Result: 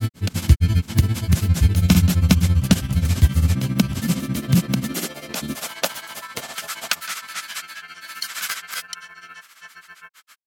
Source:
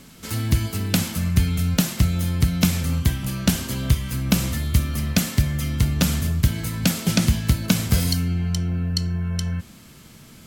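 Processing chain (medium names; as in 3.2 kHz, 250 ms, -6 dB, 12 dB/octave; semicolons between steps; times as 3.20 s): high-pass sweep 76 Hz -> 1.4 kHz, 3.21–7.06 s; granulator 96 ms, grains 15 per s, spray 817 ms, pitch spread up and down by 0 st; trim +2.5 dB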